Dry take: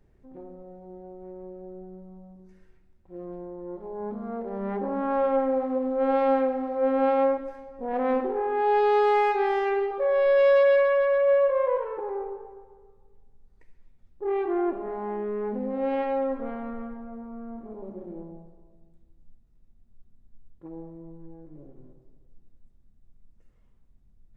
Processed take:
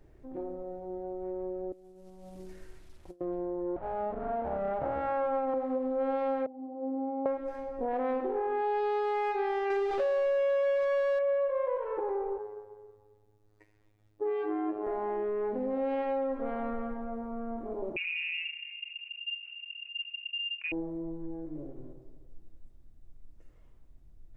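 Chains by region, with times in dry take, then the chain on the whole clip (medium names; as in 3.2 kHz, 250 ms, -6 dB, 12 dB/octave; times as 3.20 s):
1.72–3.21 s: CVSD coder 64 kbps + compressor with a negative ratio -49 dBFS, ratio -0.5
3.76–5.54 s: comb filter that takes the minimum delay 1.4 ms + low-pass 1.7 kHz
6.46–7.26 s: cascade formant filter u + tilt EQ +2.5 dB/octave
9.70–11.19 s: jump at every zero crossing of -26.5 dBFS + low-pass 3.4 kHz
12.38–14.87 s: high-pass 53 Hz + comb 7 ms, depth 31% + robot voice 105 Hz
17.96–20.72 s: gate -48 dBFS, range -23 dB + frequency inversion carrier 2.8 kHz + level flattener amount 70%
whole clip: graphic EQ with 31 bands 200 Hz -11 dB, 315 Hz +6 dB, 630 Hz +4 dB; compression 4:1, threshold -34 dBFS; trim +4 dB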